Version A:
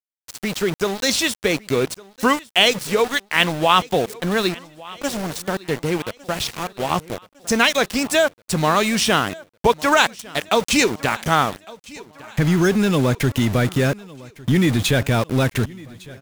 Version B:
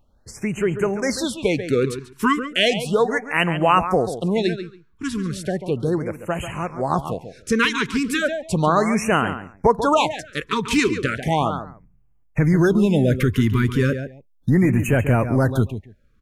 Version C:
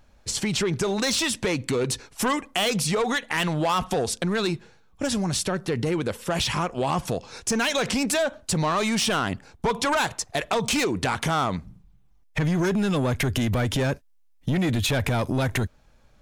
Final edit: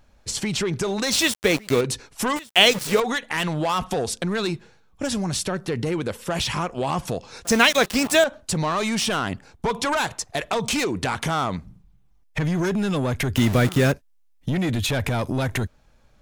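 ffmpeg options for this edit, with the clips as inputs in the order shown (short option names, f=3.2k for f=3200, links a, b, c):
-filter_complex "[0:a]asplit=4[a][b][c][d];[2:a]asplit=5[e][f][g][h][i];[e]atrim=end=1.122[j];[a]atrim=start=1.118:end=1.812[k];[f]atrim=start=1.808:end=2.362[l];[b]atrim=start=2.358:end=3.002[m];[g]atrim=start=2.998:end=7.452[n];[c]atrim=start=7.448:end=8.242[o];[h]atrim=start=8.238:end=13.362[p];[d]atrim=start=13.358:end=13.922[q];[i]atrim=start=13.918[r];[j][k]acrossfade=d=0.004:c1=hsin:c2=hsin[s];[s][l]acrossfade=d=0.004:c1=hsin:c2=hsin[t];[t][m]acrossfade=d=0.004:c1=hsin:c2=hsin[u];[u][n]acrossfade=d=0.004:c1=hsin:c2=hsin[v];[v][o]acrossfade=d=0.004:c1=hsin:c2=hsin[w];[w][p]acrossfade=d=0.004:c1=hsin:c2=hsin[x];[x][q]acrossfade=d=0.004:c1=hsin:c2=hsin[y];[y][r]acrossfade=d=0.004:c1=hsin:c2=hsin"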